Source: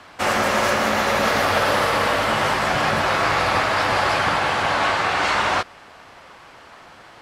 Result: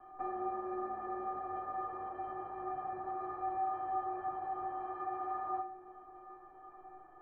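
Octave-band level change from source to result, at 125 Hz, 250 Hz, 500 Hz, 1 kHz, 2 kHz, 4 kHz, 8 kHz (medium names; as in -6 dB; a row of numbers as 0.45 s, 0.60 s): -31.0 dB, -18.0 dB, -21.5 dB, -16.0 dB, -35.5 dB, under -40 dB, under -40 dB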